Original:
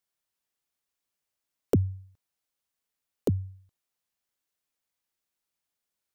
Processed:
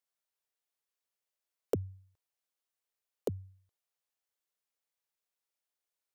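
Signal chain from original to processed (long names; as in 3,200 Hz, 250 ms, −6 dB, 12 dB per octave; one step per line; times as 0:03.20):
low shelf with overshoot 340 Hz −7 dB, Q 1.5
level −5.5 dB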